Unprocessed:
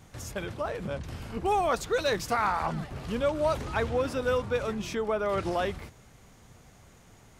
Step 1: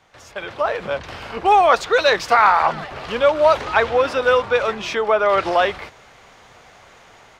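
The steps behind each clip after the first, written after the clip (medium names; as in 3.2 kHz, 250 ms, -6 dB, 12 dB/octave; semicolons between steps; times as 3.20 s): three-band isolator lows -17 dB, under 460 Hz, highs -17 dB, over 5 kHz; level rider gain up to 11 dB; trim +3.5 dB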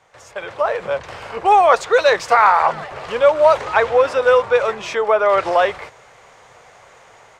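graphic EQ 125/250/500/1000/2000/8000 Hz +6/-3/+9/+6/+5/+10 dB; trim -6.5 dB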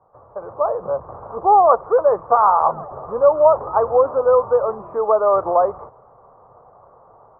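Chebyshev low-pass 1.2 kHz, order 5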